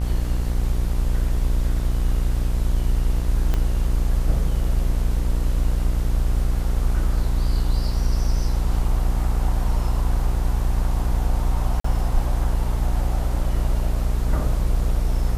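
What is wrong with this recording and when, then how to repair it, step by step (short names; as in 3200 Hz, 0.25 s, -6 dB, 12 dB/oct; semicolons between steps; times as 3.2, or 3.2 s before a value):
buzz 60 Hz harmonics 36 -24 dBFS
3.54 pop -11 dBFS
11.8–11.84 gap 44 ms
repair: de-click; de-hum 60 Hz, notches 36; interpolate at 11.8, 44 ms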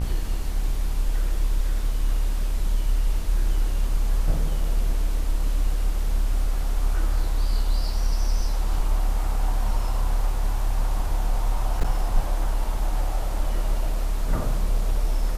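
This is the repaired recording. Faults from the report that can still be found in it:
3.54 pop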